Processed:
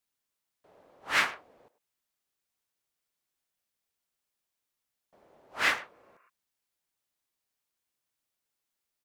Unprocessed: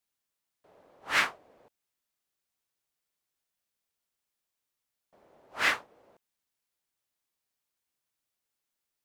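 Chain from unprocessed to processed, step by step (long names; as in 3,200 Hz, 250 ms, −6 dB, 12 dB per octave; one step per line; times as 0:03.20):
far-end echo of a speakerphone 100 ms, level −15 dB
healed spectral selection 0:05.95–0:06.26, 1,000–2,900 Hz before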